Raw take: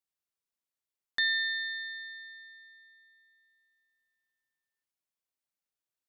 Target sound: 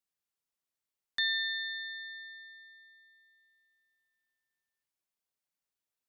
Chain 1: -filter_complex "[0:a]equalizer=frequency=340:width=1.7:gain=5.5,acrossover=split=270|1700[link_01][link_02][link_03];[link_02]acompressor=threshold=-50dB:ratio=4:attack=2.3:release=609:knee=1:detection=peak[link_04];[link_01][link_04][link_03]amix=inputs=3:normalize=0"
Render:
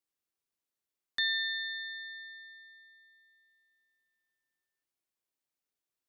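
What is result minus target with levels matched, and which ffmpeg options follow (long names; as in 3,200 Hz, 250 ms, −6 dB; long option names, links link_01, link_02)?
250 Hz band +3.0 dB
-filter_complex "[0:a]acrossover=split=270|1700[link_01][link_02][link_03];[link_02]acompressor=threshold=-50dB:ratio=4:attack=2.3:release=609:knee=1:detection=peak[link_04];[link_01][link_04][link_03]amix=inputs=3:normalize=0"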